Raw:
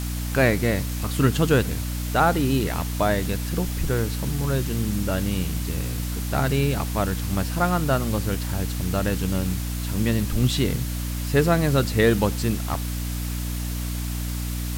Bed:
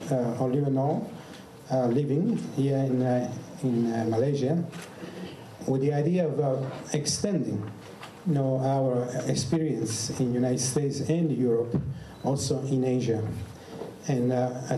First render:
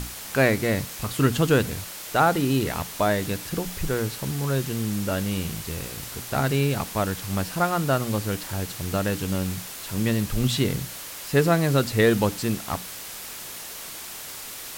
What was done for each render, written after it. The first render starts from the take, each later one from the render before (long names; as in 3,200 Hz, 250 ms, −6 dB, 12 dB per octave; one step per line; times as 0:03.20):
mains-hum notches 60/120/180/240/300 Hz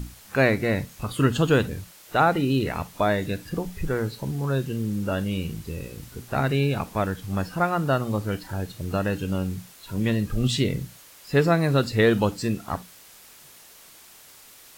noise reduction from a noise print 12 dB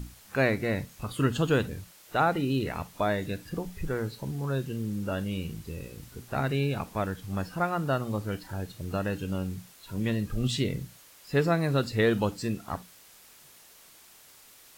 level −5 dB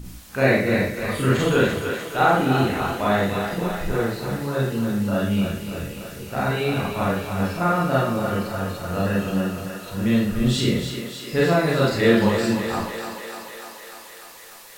on a send: feedback echo with a high-pass in the loop 297 ms, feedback 75%, high-pass 310 Hz, level −7.5 dB
on the sum: four-comb reverb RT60 0.5 s, combs from 31 ms, DRR −6.5 dB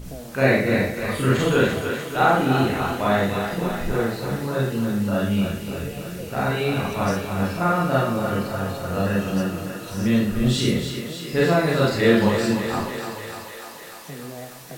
mix in bed −11.5 dB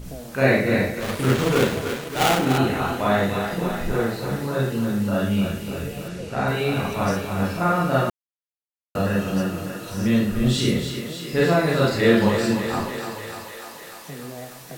0:01.00–0:02.58: gap after every zero crossing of 0.24 ms
0:06.08–0:06.48: low-pass filter 8,200 Hz
0:08.10–0:08.95: silence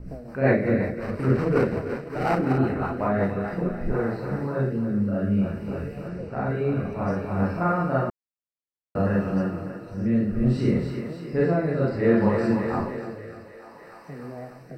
rotating-speaker cabinet horn 5.5 Hz, later 0.6 Hz, at 0:03.01
moving average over 13 samples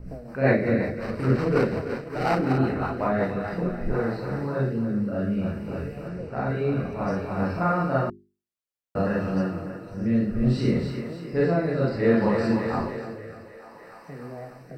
mains-hum notches 50/100/150/200/250/300/350/400 Hz
dynamic equaliser 4,300 Hz, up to +6 dB, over −53 dBFS, Q 1.3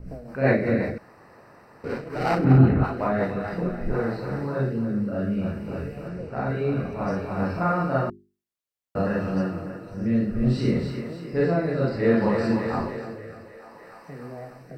0:00.98–0:01.84: fill with room tone
0:02.44–0:02.84: bass and treble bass +12 dB, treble −11 dB